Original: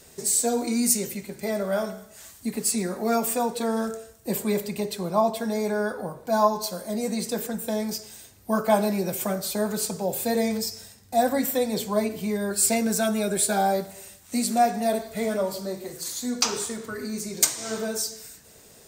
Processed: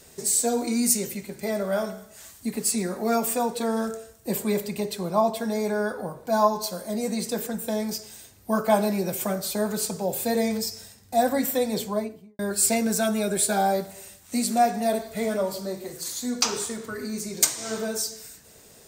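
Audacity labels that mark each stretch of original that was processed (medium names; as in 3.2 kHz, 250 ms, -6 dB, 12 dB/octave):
11.750000	12.390000	studio fade out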